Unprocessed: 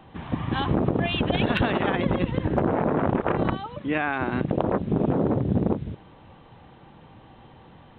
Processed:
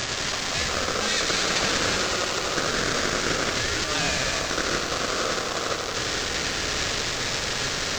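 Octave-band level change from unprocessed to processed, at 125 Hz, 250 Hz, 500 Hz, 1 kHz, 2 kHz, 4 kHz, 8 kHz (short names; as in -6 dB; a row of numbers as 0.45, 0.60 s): -8.5 dB, -8.5 dB, -2.0 dB, +0.5 dB, +7.0 dB, +13.5 dB, n/a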